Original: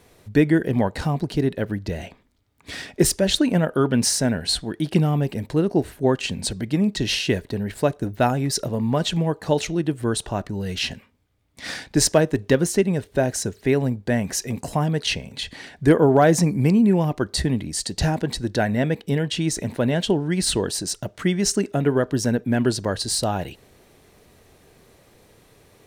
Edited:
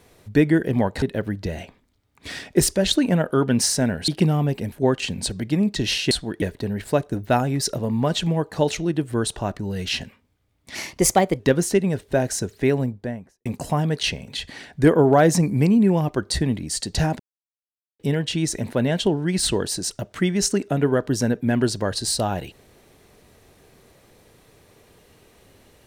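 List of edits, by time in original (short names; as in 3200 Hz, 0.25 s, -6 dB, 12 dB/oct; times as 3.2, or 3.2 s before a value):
1.02–1.45 cut
4.51–4.82 move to 7.32
5.46–5.93 cut
11.65–12.43 speed 121%
13.7–14.49 studio fade out
18.23–19.03 mute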